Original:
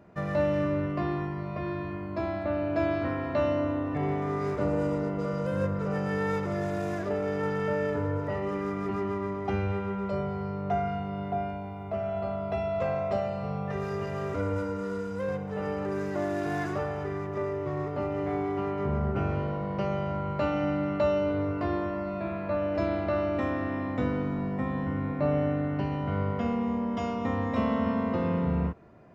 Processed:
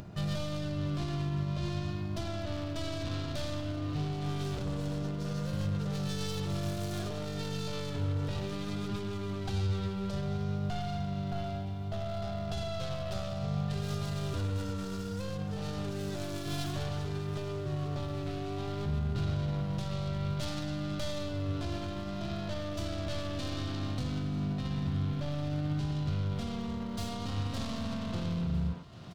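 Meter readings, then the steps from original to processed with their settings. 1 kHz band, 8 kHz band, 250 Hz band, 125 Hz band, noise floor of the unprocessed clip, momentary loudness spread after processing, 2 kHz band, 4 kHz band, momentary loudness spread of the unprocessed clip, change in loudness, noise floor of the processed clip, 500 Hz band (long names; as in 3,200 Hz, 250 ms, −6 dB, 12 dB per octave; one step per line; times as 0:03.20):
−9.5 dB, can't be measured, −6.0 dB, +0.5 dB, −35 dBFS, 4 LU, −8.0 dB, +8.0 dB, 5 LU, −5.0 dB, −37 dBFS, −10.5 dB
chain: stylus tracing distortion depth 0.38 ms
far-end echo of a speakerphone 110 ms, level −7 dB
brickwall limiter −25.5 dBFS, peak gain reduction 10 dB
hard clipping −27.5 dBFS, distortion −24 dB
octave-band graphic EQ 125/250/500/1,000/2,000/4,000 Hz +4/−7/−10/−7/−11/+5 dB
feedback echo with a high-pass in the loop 784 ms, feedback 70%, level −19 dB
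pitch vibrato 0.59 Hz 29 cents
upward compression, threshold −41 dBFS
level +4 dB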